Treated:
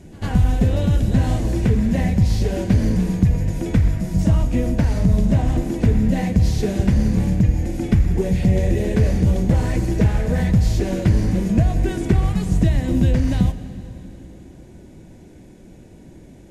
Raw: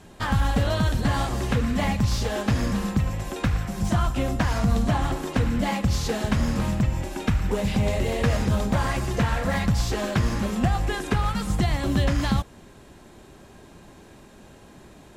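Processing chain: FFT filter 360 Hz 0 dB, 700 Hz -7 dB, 1.4 kHz -18 dB, 2.1 kHz -7 dB, 3.5 kHz -12 dB, 8.5 kHz -7 dB; in parallel at +1 dB: gain riding; on the sum: pre-echo 89 ms -20 dB; plate-style reverb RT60 3.4 s, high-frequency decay 0.9×, DRR 12 dB; speed mistake 48 kHz file played as 44.1 kHz

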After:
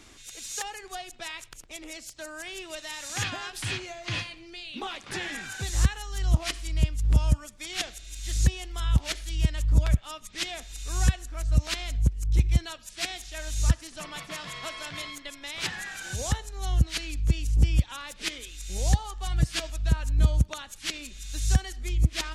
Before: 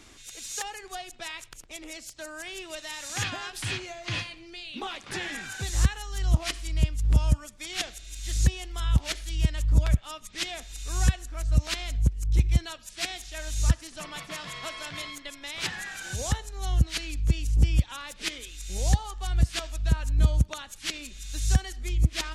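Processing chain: 19.26–19.70 s: comb 6.5 ms, depth 63%

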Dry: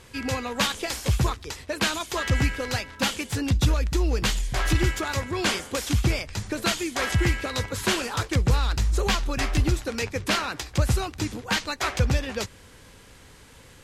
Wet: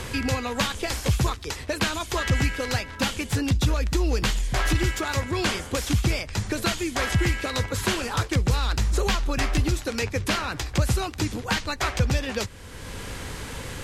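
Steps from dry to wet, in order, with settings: three bands compressed up and down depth 70%

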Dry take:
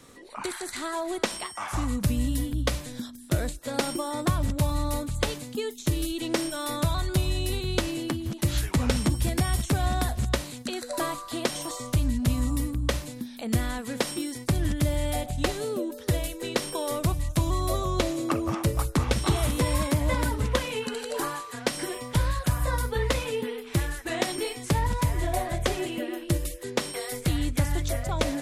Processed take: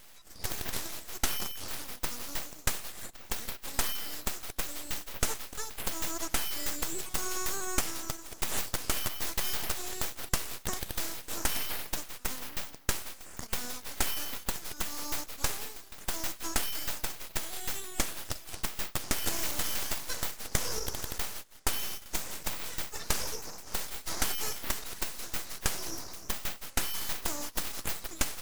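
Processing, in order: 21.18–22.06 s: gate -34 dBFS, range -15 dB; steep high-pass 2.2 kHz 36 dB/octave; full-wave rectifier; trim +6.5 dB

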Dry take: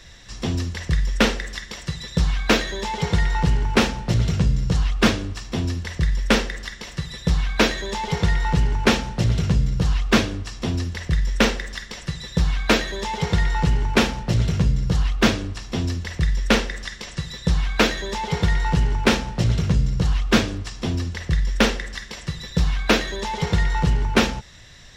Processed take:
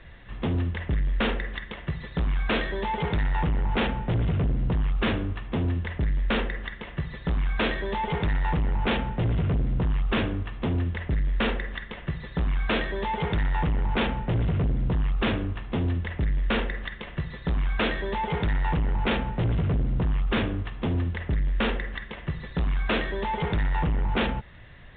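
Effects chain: local Wiener filter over 9 samples; overload inside the chain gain 21.5 dB; µ-law 64 kbps 8 kHz

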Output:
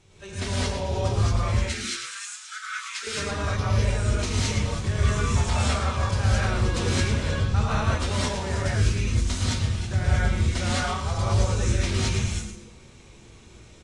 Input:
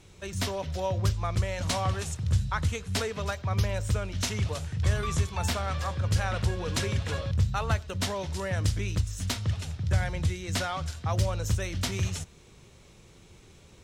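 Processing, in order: 1.50–3.07 s: Chebyshev high-pass 1.3 kHz, order 8; on a send: frequency-shifting echo 112 ms, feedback 33%, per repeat -150 Hz, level -8 dB; on the sum: gated-style reverb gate 240 ms rising, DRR -7 dB; trim -4.5 dB; AAC 32 kbps 22.05 kHz

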